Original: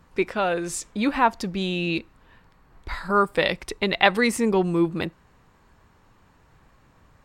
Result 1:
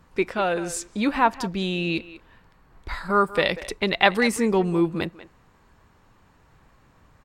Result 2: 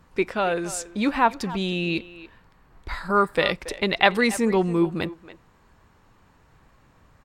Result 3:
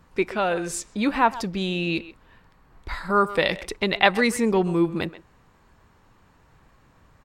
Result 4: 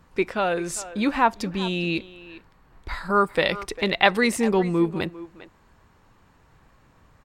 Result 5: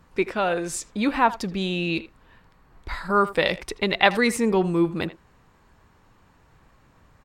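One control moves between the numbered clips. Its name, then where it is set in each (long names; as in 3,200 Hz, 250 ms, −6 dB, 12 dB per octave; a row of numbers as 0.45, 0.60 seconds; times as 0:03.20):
far-end echo of a speakerphone, delay time: 190, 280, 130, 400, 80 milliseconds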